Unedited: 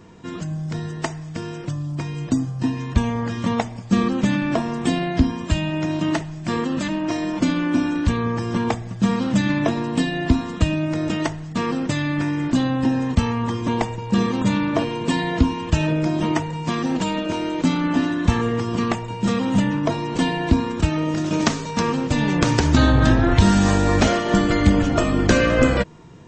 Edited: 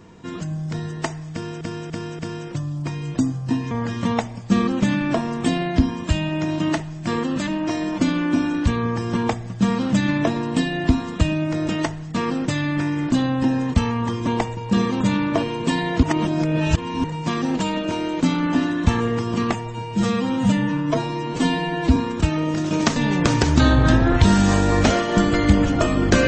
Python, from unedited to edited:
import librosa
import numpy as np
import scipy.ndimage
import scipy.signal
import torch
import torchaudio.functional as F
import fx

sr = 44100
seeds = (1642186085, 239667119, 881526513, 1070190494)

y = fx.edit(x, sr, fx.repeat(start_s=1.32, length_s=0.29, count=4),
    fx.cut(start_s=2.84, length_s=0.28),
    fx.reverse_span(start_s=15.44, length_s=1.01),
    fx.stretch_span(start_s=18.94, length_s=1.62, factor=1.5),
    fx.cut(start_s=21.56, length_s=0.57), tone=tone)